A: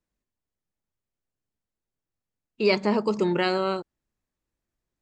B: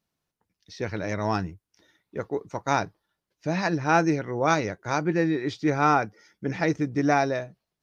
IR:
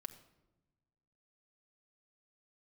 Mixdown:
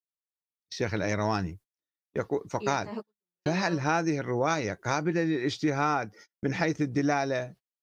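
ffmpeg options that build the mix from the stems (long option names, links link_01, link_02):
-filter_complex "[0:a]dynaudnorm=framelen=130:gausssize=3:maxgain=16.5dB,asplit=2[link_01][link_02];[link_02]adelay=11.9,afreqshift=-1.9[link_03];[link_01][link_03]amix=inputs=2:normalize=1,volume=-18dB[link_04];[1:a]agate=range=-22dB:threshold=-48dB:ratio=16:detection=peak,highshelf=frequency=3500:gain=5,volume=2.5dB,asplit=2[link_05][link_06];[link_06]apad=whole_len=221763[link_07];[link_04][link_07]sidechaingate=range=-46dB:threshold=-44dB:ratio=16:detection=peak[link_08];[link_08][link_05]amix=inputs=2:normalize=0,agate=range=-19dB:threshold=-48dB:ratio=16:detection=peak,acompressor=threshold=-24dB:ratio=4"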